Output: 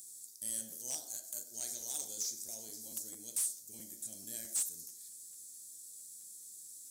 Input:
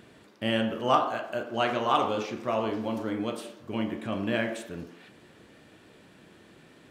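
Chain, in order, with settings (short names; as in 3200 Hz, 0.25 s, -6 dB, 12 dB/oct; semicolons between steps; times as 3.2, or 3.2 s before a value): inverse Chebyshev high-pass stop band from 3000 Hz, stop band 50 dB; in parallel at -7 dB: sine folder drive 13 dB, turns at -37 dBFS; on the sum: crackling interface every 0.22 s, samples 512, repeat, from 0.7; gain +11.5 dB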